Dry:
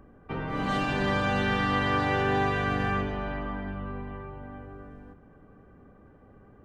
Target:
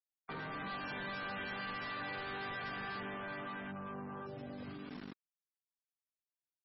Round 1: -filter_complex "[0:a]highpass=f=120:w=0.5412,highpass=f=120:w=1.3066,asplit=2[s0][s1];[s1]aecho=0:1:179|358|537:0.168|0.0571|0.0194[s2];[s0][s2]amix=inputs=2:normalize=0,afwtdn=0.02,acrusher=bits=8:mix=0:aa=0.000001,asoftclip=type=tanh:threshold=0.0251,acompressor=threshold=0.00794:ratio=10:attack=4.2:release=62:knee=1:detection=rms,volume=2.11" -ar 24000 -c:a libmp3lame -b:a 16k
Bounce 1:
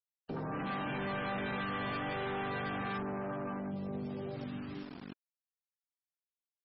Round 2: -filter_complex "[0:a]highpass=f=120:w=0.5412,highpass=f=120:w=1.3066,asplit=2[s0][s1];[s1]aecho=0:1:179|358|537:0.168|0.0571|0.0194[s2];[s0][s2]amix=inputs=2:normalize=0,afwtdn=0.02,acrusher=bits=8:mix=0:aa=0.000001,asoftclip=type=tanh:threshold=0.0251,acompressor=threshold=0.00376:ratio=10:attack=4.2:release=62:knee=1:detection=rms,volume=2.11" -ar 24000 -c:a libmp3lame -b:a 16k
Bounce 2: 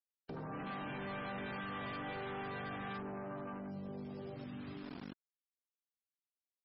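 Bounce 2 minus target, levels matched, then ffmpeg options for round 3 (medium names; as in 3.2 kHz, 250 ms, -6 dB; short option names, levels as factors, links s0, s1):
2 kHz band -3.5 dB
-filter_complex "[0:a]highpass=f=120:w=0.5412,highpass=f=120:w=1.3066,equalizer=f=1700:w=0.9:g=9.5,asplit=2[s0][s1];[s1]aecho=0:1:179|358|537:0.168|0.0571|0.0194[s2];[s0][s2]amix=inputs=2:normalize=0,afwtdn=0.02,acrusher=bits=8:mix=0:aa=0.000001,asoftclip=type=tanh:threshold=0.0251,acompressor=threshold=0.00376:ratio=10:attack=4.2:release=62:knee=1:detection=rms,volume=2.11" -ar 24000 -c:a libmp3lame -b:a 16k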